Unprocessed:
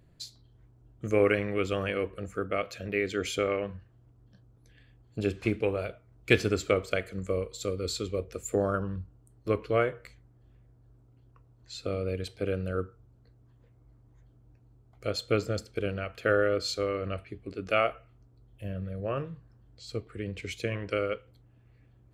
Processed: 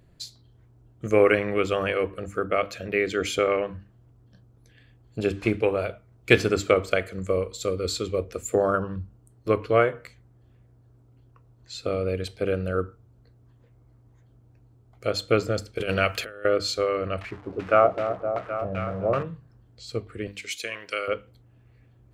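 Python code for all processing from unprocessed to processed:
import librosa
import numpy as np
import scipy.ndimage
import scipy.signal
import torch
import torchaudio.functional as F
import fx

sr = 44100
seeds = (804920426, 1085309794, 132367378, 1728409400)

y = fx.chain(x, sr, fx.over_compress(threshold_db=-33.0, ratio=-0.5),
    fx.high_shelf(hz=2300.0, db=11.0), at=(15.78, 16.45))
y = fx.chain(y, sr, fx.crossing_spikes(level_db=-24.5),
    fx.echo_opening(ms=258, hz=750, octaves=1, feedback_pct=70, wet_db=-6),
    fx.filter_lfo_lowpass(shape='saw_down', hz=2.6, low_hz=580.0, high_hz=2300.0, q=1.3), at=(17.21, 19.23))
y = fx.chain(y, sr, fx.highpass(hz=1400.0, slope=6),
    fx.high_shelf(hz=3500.0, db=7.5), at=(20.27, 21.08))
y = fx.hum_notches(y, sr, base_hz=50, count=6)
y = fx.dynamic_eq(y, sr, hz=930.0, q=0.8, threshold_db=-42.0, ratio=4.0, max_db=4)
y = F.gain(torch.from_numpy(y), 4.0).numpy()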